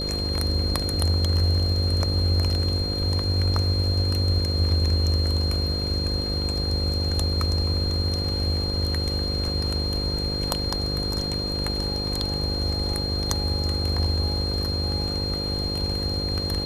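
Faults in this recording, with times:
buzz 50 Hz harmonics 11 -30 dBFS
tone 4200 Hz -28 dBFS

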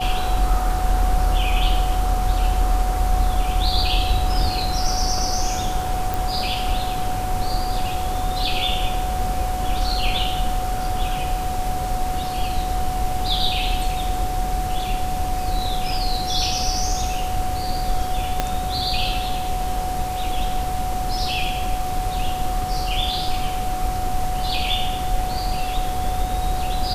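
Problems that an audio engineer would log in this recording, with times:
tone 740 Hz -25 dBFS
6.14 pop
18.4 pop -5 dBFS

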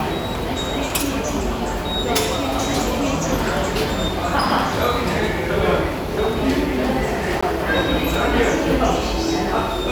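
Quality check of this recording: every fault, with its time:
7.41–7.42 gap 15 ms

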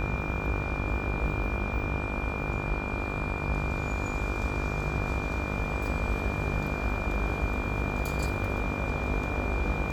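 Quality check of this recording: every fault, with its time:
buzz 50 Hz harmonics 30 -34 dBFS
tone 2400 Hz -36 dBFS

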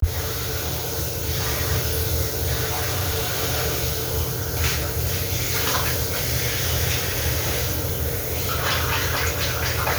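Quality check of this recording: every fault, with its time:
2.66–3.35 clipped -19.5 dBFS

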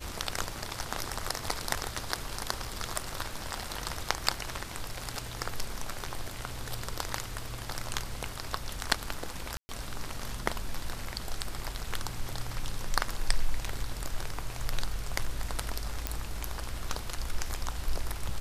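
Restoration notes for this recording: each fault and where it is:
9.57–9.69 gap 0.12 s
16.07 pop -12 dBFS

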